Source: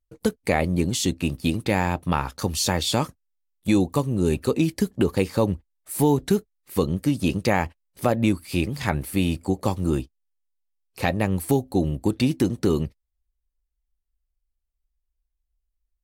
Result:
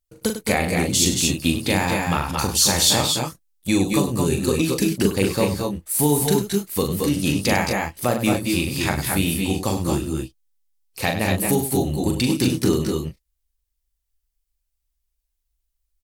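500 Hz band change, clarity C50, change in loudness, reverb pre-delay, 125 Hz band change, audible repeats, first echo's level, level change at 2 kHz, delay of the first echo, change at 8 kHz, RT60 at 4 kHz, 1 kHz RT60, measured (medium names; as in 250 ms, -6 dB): +2.0 dB, no reverb, +3.5 dB, no reverb, +1.5 dB, 4, -5.5 dB, +5.0 dB, 41 ms, +11.0 dB, no reverb, no reverb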